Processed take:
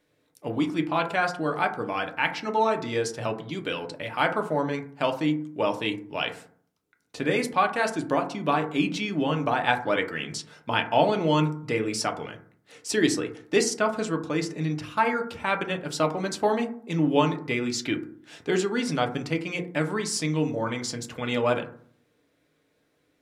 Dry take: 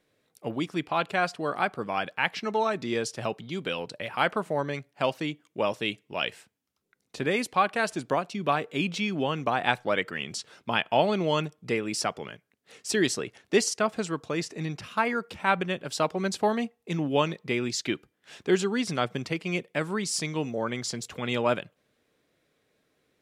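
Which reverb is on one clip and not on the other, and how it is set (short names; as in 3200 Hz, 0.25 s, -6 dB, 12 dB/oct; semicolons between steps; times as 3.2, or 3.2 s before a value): FDN reverb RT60 0.54 s, low-frequency decay 1.3×, high-frequency decay 0.3×, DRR 4 dB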